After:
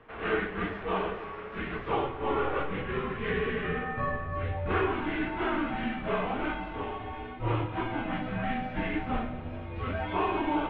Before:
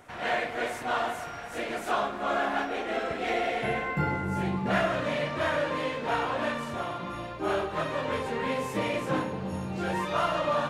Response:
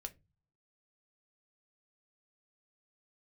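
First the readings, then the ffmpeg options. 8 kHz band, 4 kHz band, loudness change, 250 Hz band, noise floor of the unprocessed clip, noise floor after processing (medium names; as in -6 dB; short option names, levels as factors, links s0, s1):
under -35 dB, -6.0 dB, -2.0 dB, +0.5 dB, -39 dBFS, -40 dBFS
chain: -af "highpass=f=190:t=q:w=0.5412,highpass=f=190:t=q:w=1.307,lowpass=f=3500:t=q:w=0.5176,lowpass=f=3500:t=q:w=0.7071,lowpass=f=3500:t=q:w=1.932,afreqshift=-280,flanger=delay=8.5:depth=1.9:regen=71:speed=0.53:shape=sinusoidal,bandreject=f=50.94:t=h:w=4,bandreject=f=101.88:t=h:w=4,bandreject=f=152.82:t=h:w=4,bandreject=f=203.76:t=h:w=4,bandreject=f=254.7:t=h:w=4,bandreject=f=305.64:t=h:w=4,bandreject=f=356.58:t=h:w=4,bandreject=f=407.52:t=h:w=4,bandreject=f=458.46:t=h:w=4,bandreject=f=509.4:t=h:w=4,bandreject=f=560.34:t=h:w=4,bandreject=f=611.28:t=h:w=4,bandreject=f=662.22:t=h:w=4,volume=1.5"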